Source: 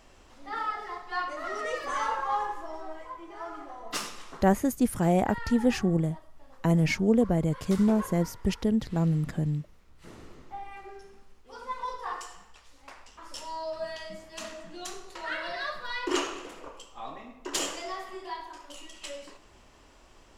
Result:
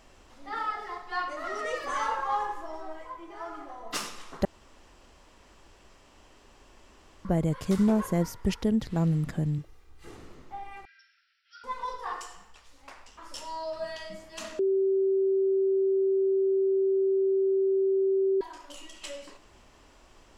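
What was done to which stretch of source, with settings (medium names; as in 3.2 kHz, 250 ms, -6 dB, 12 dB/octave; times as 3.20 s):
4.45–7.25 s: room tone
9.58–10.17 s: comb 2.5 ms
10.85–11.64 s: brick-wall FIR band-pass 1.3–5.8 kHz
14.59–18.41 s: bleep 386 Hz -21.5 dBFS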